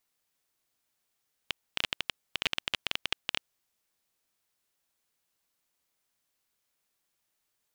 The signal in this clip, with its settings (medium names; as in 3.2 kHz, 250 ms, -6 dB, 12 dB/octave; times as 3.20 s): random clicks 15 per s -10 dBFS 1.89 s